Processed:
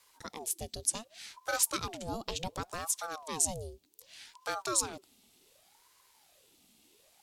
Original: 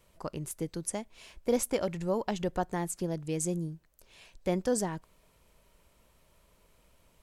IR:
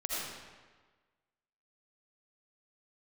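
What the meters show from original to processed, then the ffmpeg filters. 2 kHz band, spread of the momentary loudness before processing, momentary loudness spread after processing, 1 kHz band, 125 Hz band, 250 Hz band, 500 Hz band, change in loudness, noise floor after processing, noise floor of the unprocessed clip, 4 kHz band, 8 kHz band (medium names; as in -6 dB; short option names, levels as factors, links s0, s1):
+4.0 dB, 11 LU, 18 LU, -0.5 dB, -9.5 dB, -12.0 dB, -9.5 dB, -0.5 dB, -66 dBFS, -66 dBFS, +7.0 dB, +6.5 dB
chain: -af "highshelf=f=2400:t=q:w=1.5:g=12.5,aeval=exprs='val(0)*sin(2*PI*630*n/s+630*0.65/0.67*sin(2*PI*0.67*n/s))':c=same,volume=0.631"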